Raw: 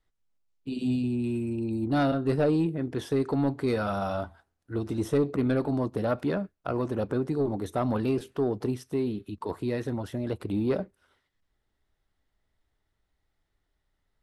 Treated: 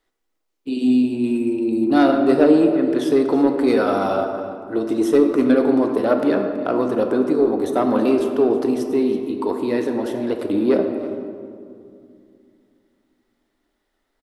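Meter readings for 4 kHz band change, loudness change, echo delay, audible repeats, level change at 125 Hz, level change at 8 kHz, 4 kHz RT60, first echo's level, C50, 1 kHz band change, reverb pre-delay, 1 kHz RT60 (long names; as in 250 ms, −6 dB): +8.5 dB, +10.0 dB, 326 ms, 1, −5.0 dB, can't be measured, 1.1 s, −16.5 dB, 5.5 dB, +10.0 dB, 4 ms, 2.3 s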